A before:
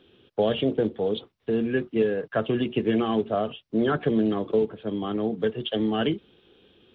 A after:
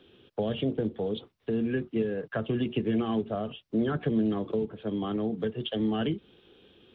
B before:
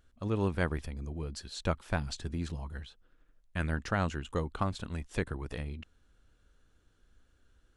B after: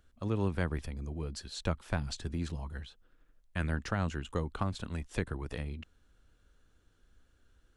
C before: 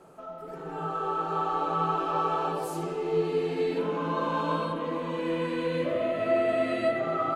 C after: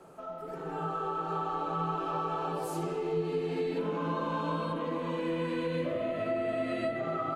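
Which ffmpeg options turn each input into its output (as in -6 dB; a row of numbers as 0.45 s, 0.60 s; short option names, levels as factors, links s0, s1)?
-filter_complex "[0:a]acrossover=split=240[s0][s1];[s1]acompressor=threshold=0.0251:ratio=3[s2];[s0][s2]amix=inputs=2:normalize=0"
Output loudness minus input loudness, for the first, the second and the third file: -4.5 LU, -1.0 LU, -4.5 LU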